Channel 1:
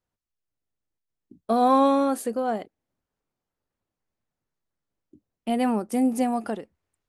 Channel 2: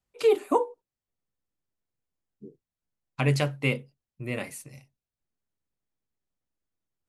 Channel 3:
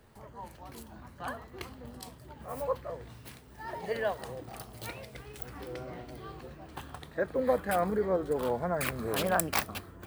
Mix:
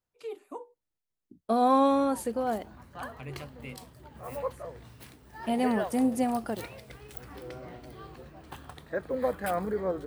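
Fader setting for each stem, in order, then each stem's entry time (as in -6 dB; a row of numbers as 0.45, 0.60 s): -3.5, -18.0, -1.5 dB; 0.00, 0.00, 1.75 s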